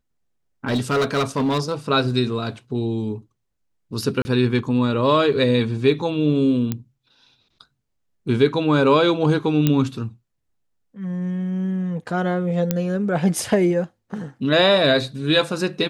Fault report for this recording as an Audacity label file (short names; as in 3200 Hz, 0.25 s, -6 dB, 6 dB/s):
0.660000	1.740000	clipped -16.5 dBFS
4.220000	4.250000	gap 30 ms
6.720000	6.720000	pop -10 dBFS
9.670000	9.670000	pop -5 dBFS
12.710000	12.710000	pop -6 dBFS